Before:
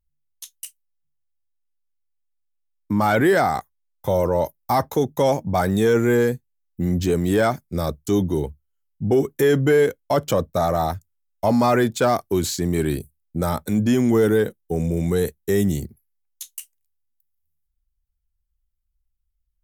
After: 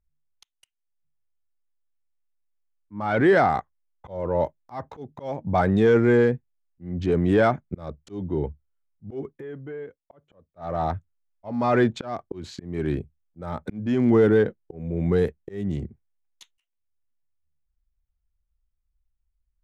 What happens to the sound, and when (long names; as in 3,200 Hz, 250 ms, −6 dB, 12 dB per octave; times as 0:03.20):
0:09.28–0:10.67: duck −19.5 dB, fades 0.14 s
whole clip: adaptive Wiener filter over 9 samples; low-pass filter 3,400 Hz 12 dB per octave; volume swells 399 ms